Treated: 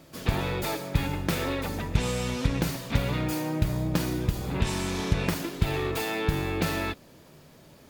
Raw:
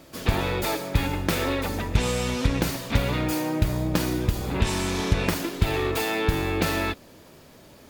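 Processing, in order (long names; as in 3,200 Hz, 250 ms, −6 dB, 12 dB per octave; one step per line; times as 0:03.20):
parametric band 150 Hz +7 dB 0.42 octaves
level −4 dB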